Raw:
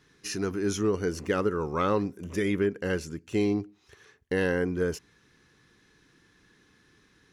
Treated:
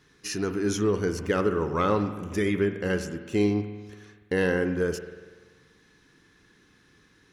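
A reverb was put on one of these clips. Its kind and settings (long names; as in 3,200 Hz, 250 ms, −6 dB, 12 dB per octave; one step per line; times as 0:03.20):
spring reverb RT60 1.4 s, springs 48 ms, chirp 65 ms, DRR 8.5 dB
level +1.5 dB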